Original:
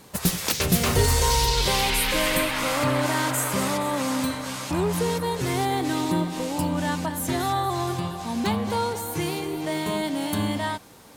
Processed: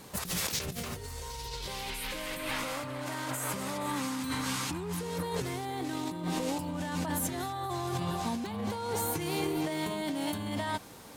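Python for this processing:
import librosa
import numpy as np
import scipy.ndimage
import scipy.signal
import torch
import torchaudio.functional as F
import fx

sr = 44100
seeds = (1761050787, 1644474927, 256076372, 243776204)

y = fx.peak_eq(x, sr, hz=600.0, db=-15.0, octaves=0.36, at=(3.86, 5.03))
y = fx.over_compress(y, sr, threshold_db=-30.0, ratio=-1.0)
y = y * 10.0 ** (-5.0 / 20.0)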